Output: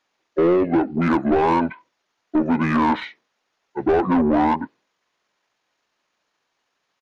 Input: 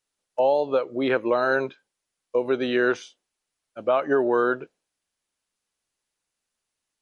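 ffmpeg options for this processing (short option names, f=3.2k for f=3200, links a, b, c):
-filter_complex "[0:a]asetrate=27781,aresample=44100,atempo=1.5874,asplit=2[a][b];[b]highpass=f=720:p=1,volume=24dB,asoftclip=type=tanh:threshold=-9dB[c];[a][c]amix=inputs=2:normalize=0,lowpass=f=1.2k:p=1,volume=-6dB"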